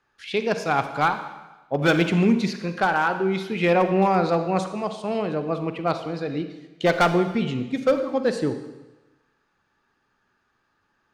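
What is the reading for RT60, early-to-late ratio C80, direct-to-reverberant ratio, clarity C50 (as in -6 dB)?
1.1 s, 11.0 dB, 8.5 dB, 9.5 dB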